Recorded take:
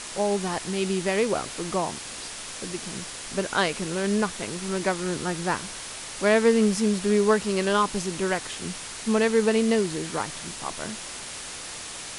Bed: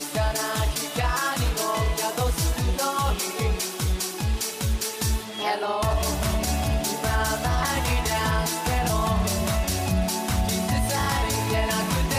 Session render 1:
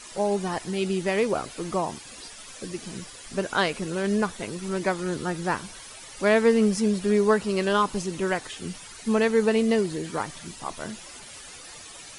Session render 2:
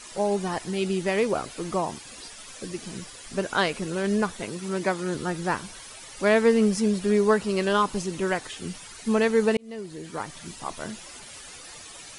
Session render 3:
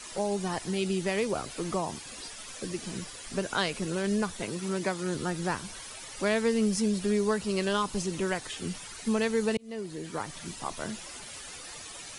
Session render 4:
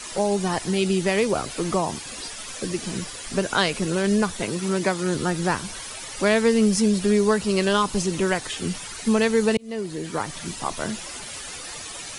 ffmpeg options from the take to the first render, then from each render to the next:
-af "afftdn=nr=12:nf=-38"
-filter_complex "[0:a]asettb=1/sr,asplit=3[s0][s1][s2];[s0]atrim=end=4.464[s3];[s1]atrim=start=4.46:end=5.15,asetpts=PTS-STARTPTS,afade=t=in:d=0.004:c=qsin,afade=t=out:st=0.686:d=0.004:c=qsin,highpass=96[s4];[s2]atrim=start=5.146[s5];[s3][s4]acrossfade=d=0.004:c1=hsin:c2=qsin[s6];[s6][s5]acrossfade=d=0.004:c1=qsin:c2=hsin,asplit=2[s7][s8];[s7]atrim=end=9.57,asetpts=PTS-STARTPTS,afade=t=out:st=9.566:d=0.004:c=hsin[s9];[s8]atrim=start=9.57,asetpts=PTS-STARTPTS,afade=t=in:d=0.94[s10];[s9][s10]concat=n=2:v=0:a=1"
-filter_complex "[0:a]acrossover=split=160|3000[s0][s1][s2];[s1]acompressor=threshold=0.0282:ratio=2[s3];[s0][s3][s2]amix=inputs=3:normalize=0"
-af "volume=2.37"

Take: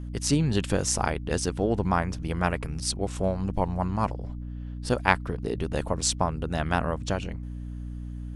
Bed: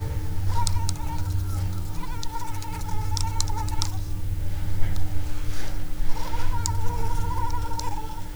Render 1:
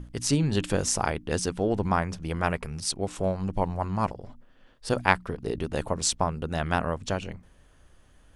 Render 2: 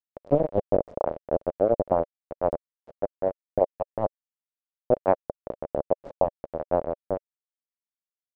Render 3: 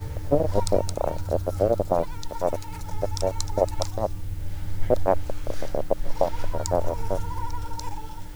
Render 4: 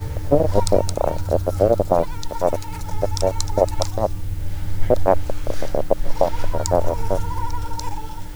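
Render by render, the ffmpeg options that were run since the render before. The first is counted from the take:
-af "bandreject=f=60:t=h:w=6,bandreject=f=120:t=h:w=6,bandreject=f=180:t=h:w=6,bandreject=f=240:t=h:w=6,bandreject=f=300:t=h:w=6"
-af "aeval=exprs='val(0)*gte(abs(val(0)),0.119)':c=same,lowpass=f=580:t=q:w=4.9"
-filter_complex "[1:a]volume=0.631[s0];[0:a][s0]amix=inputs=2:normalize=0"
-af "volume=1.88,alimiter=limit=0.794:level=0:latency=1"

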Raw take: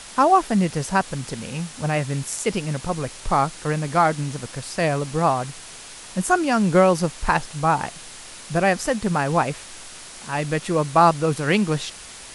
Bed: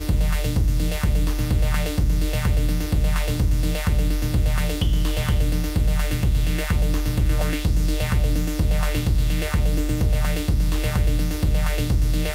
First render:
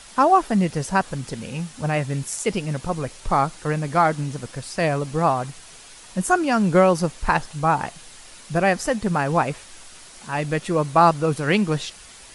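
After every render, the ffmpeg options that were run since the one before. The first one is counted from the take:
-af "afftdn=nr=6:nf=-40"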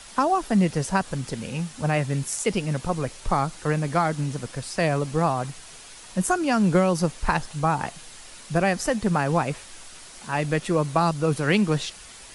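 -filter_complex "[0:a]acrossover=split=250|3000[s0][s1][s2];[s1]acompressor=threshold=0.112:ratio=6[s3];[s0][s3][s2]amix=inputs=3:normalize=0"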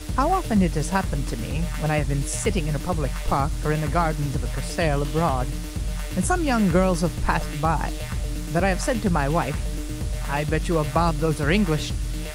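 -filter_complex "[1:a]volume=0.398[s0];[0:a][s0]amix=inputs=2:normalize=0"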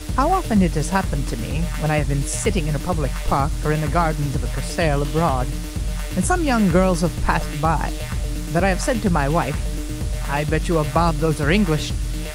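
-af "volume=1.41"

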